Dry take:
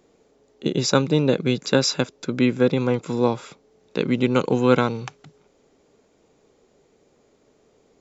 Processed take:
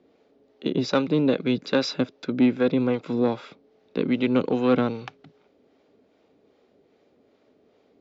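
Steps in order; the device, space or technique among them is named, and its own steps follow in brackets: guitar amplifier with harmonic tremolo (harmonic tremolo 2.5 Hz, depth 50%, crossover 510 Hz; soft clip -12 dBFS, distortion -18 dB; speaker cabinet 81–4500 Hz, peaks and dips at 140 Hz -6 dB, 270 Hz +5 dB, 640 Hz +3 dB, 990 Hz -3 dB)

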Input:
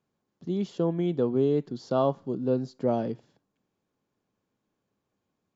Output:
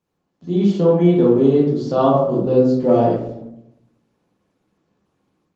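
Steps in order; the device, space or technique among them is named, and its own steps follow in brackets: far-field microphone of a smart speaker (reverb RT60 0.85 s, pre-delay 9 ms, DRR -6 dB; HPF 81 Hz 24 dB/oct; AGC gain up to 6 dB; Opus 20 kbps 48000 Hz)

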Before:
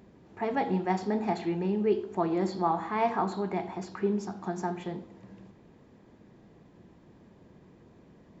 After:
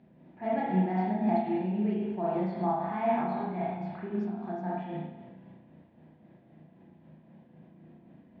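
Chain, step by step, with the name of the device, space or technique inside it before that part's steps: combo amplifier with spring reverb and tremolo (spring tank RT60 1.2 s, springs 32/38 ms, chirp 70 ms, DRR -6 dB; tremolo 3.8 Hz, depth 36%; speaker cabinet 81–3800 Hz, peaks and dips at 110 Hz -4 dB, 150 Hz +7 dB, 240 Hz +7 dB, 440 Hz -8 dB, 650 Hz +7 dB, 1200 Hz -7 dB); gain -8 dB

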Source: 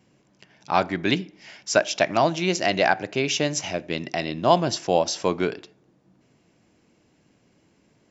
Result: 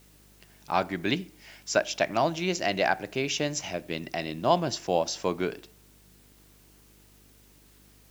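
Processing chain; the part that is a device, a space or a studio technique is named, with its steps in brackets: video cassette with head-switching buzz (buzz 50 Hz, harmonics 9, -55 dBFS -5 dB/oct; white noise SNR 30 dB); gain -5 dB

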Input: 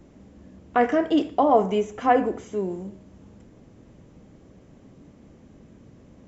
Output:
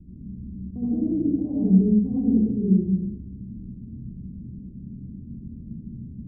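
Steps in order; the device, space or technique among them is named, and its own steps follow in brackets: club heard from the street (limiter -15.5 dBFS, peak gain reduction 10 dB; LPF 220 Hz 24 dB/oct; reverb RT60 0.95 s, pre-delay 62 ms, DRR -8 dB); gain +6 dB

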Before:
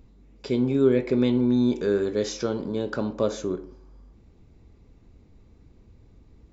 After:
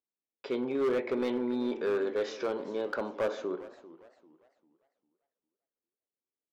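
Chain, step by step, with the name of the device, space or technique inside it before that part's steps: walkie-talkie (BPF 470–2600 Hz; hard clip -24.5 dBFS, distortion -12 dB; gate -59 dBFS, range -36 dB); 1.18–1.9 notch 6600 Hz, Q 9; warbling echo 0.399 s, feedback 33%, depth 171 cents, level -17.5 dB

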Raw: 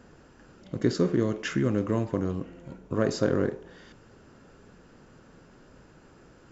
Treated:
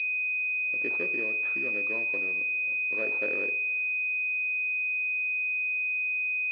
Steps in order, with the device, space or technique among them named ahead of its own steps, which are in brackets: toy sound module (decimation joined by straight lines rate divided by 8×; pulse-width modulation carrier 2500 Hz; speaker cabinet 710–4600 Hz, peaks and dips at 770 Hz -10 dB, 1100 Hz -7 dB, 1600 Hz -3 dB, 2400 Hz +6 dB, 4000 Hz +9 dB)

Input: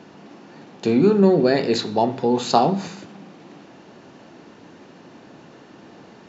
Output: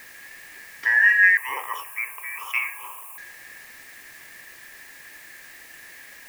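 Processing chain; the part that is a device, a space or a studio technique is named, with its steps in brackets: split-band scrambled radio (four-band scrambler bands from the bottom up 2143; BPF 370–3200 Hz; white noise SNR 25 dB); 1.37–3.18 EQ curve 130 Hz 0 dB, 210 Hz -26 dB, 430 Hz -4 dB, 640 Hz -4 dB, 1100 Hz +14 dB, 1700 Hz -24 dB, 2600 Hz +1 dB, 4000 Hz -23 dB, 10000 Hz +10 dB; gain -1 dB

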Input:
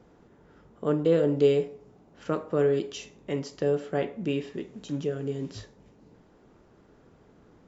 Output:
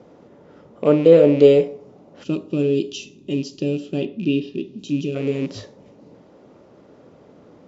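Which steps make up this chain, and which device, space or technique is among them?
4.06–4.79 LPF 5100 Hz 24 dB/oct; car door speaker with a rattle (rattling part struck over -34 dBFS, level -35 dBFS; speaker cabinet 110–6700 Hz, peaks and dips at 280 Hz +3 dB, 560 Hz +9 dB, 1600 Hz -5 dB); 2.24–5.15 spectral gain 430–2400 Hz -17 dB; gain +7.5 dB

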